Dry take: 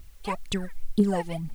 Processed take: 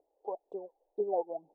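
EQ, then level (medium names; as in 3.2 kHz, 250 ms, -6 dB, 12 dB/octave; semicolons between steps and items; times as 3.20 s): elliptic band-pass 280–820 Hz, stop band 50 dB; static phaser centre 590 Hz, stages 4; 0.0 dB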